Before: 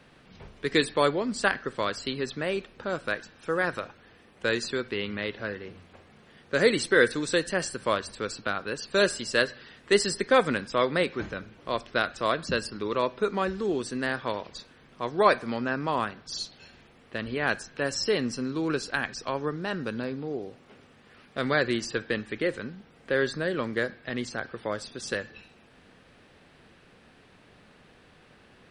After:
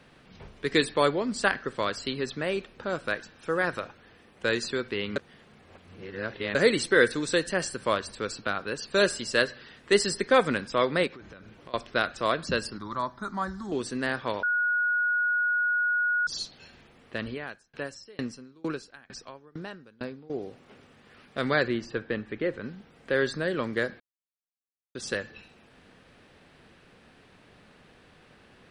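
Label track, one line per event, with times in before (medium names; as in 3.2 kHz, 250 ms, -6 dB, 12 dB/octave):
5.160000	6.550000	reverse
11.070000	11.740000	compression 12:1, threshold -42 dBFS
12.780000	13.720000	static phaser centre 1.1 kHz, stages 4
14.430000	16.270000	bleep 1.45 kHz -22.5 dBFS
17.280000	20.300000	sawtooth tremolo in dB decaying 2.2 Hz, depth 30 dB
21.680000	22.640000	tape spacing loss at 10 kHz 22 dB
24.000000	24.950000	mute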